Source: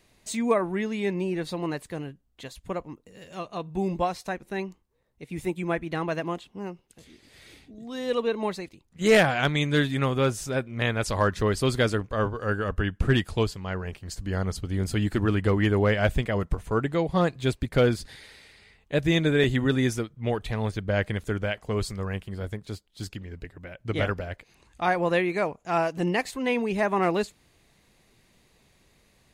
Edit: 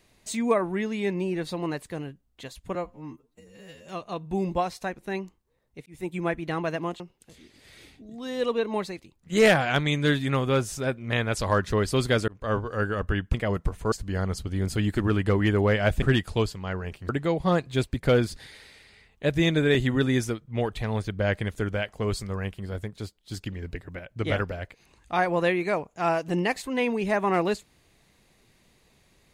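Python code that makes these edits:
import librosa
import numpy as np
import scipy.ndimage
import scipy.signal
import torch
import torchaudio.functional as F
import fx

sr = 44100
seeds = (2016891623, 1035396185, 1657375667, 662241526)

y = fx.edit(x, sr, fx.stretch_span(start_s=2.75, length_s=0.56, factor=2.0),
    fx.fade_in_span(start_s=5.3, length_s=0.3),
    fx.cut(start_s=6.44, length_s=0.25),
    fx.fade_in_span(start_s=11.97, length_s=0.32, curve='qsin'),
    fx.swap(start_s=13.03, length_s=1.07, other_s=16.2, other_length_s=0.58),
    fx.clip_gain(start_s=23.15, length_s=0.53, db=4.0), tone=tone)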